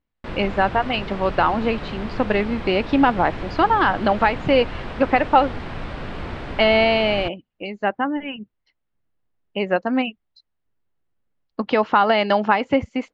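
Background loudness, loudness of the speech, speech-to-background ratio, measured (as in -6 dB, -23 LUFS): -32.5 LUFS, -20.5 LUFS, 12.0 dB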